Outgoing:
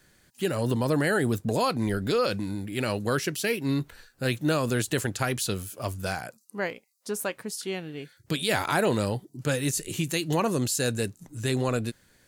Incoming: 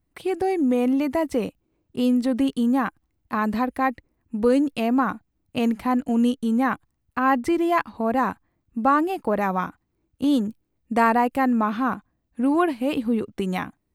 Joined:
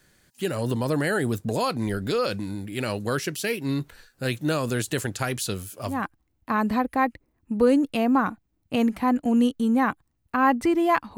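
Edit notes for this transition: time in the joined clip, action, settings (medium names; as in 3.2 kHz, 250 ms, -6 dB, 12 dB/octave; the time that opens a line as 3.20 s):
outgoing
5.96 s: go over to incoming from 2.79 s, crossfade 0.22 s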